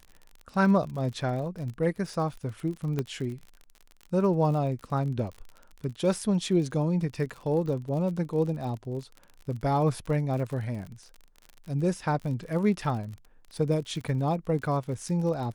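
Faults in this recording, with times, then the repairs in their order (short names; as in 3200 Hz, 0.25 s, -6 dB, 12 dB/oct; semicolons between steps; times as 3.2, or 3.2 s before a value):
crackle 44/s -36 dBFS
2.99 pop -17 dBFS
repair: de-click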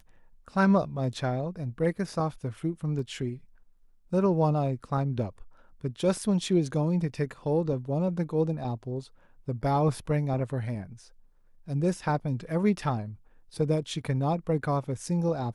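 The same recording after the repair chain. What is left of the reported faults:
2.99 pop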